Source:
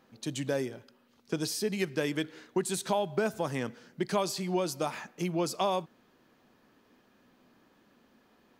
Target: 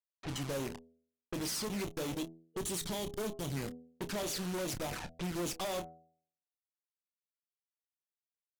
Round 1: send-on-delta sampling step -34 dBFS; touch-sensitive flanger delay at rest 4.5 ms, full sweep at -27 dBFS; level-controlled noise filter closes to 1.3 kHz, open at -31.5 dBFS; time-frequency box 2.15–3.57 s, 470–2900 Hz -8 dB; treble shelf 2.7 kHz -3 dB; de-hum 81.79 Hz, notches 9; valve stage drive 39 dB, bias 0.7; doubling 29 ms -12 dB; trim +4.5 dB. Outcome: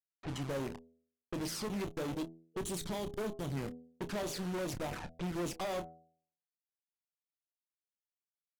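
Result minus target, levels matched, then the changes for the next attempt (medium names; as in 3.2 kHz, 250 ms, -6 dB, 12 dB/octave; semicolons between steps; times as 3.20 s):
4 kHz band -3.0 dB
change: treble shelf 2.7 kHz +6.5 dB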